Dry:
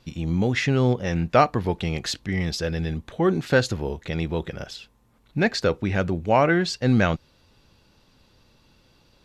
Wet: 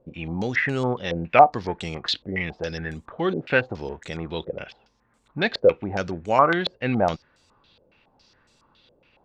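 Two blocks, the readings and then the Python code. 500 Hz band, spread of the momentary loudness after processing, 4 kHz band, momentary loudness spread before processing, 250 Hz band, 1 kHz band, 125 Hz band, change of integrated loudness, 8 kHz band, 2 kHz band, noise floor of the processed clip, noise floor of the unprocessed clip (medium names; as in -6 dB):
+0.5 dB, 15 LU, 0.0 dB, 11 LU, -4.5 dB, +4.0 dB, -7.5 dB, -0.5 dB, under -10 dB, +1.0 dB, -64 dBFS, -61 dBFS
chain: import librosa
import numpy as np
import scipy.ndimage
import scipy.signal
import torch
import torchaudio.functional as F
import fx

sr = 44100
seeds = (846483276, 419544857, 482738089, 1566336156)

y = fx.low_shelf(x, sr, hz=180.0, db=-8.5)
y = fx.filter_held_lowpass(y, sr, hz=7.2, low_hz=540.0, high_hz=7900.0)
y = y * 10.0 ** (-2.0 / 20.0)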